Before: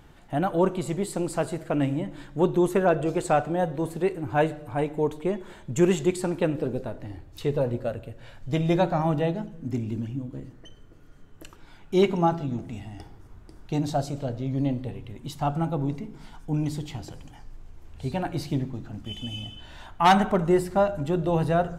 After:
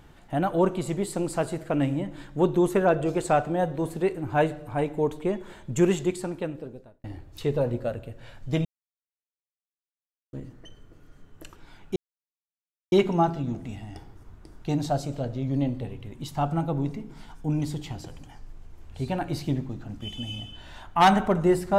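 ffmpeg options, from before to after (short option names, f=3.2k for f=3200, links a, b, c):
-filter_complex "[0:a]asplit=5[a][b][c][d][e];[a]atrim=end=7.04,asetpts=PTS-STARTPTS,afade=t=out:st=5.75:d=1.29[f];[b]atrim=start=7.04:end=8.65,asetpts=PTS-STARTPTS,afade=t=in:d=0.004:c=hsin,afade=t=out:st=1.606:d=0.004:c=hsin[g];[c]atrim=start=8.65:end=10.33,asetpts=PTS-STARTPTS,volume=0[h];[d]atrim=start=10.33:end=11.96,asetpts=PTS-STARTPTS,afade=t=in:d=0.004:c=hsin,afade=t=out:st=1.626:d=0.004:c=hsin,apad=pad_dur=0.96[i];[e]atrim=start=11.96,asetpts=PTS-STARTPTS,afade=t=in:d=0.004:c=hsin[j];[f][g][h][i][j]concat=n=5:v=0:a=1"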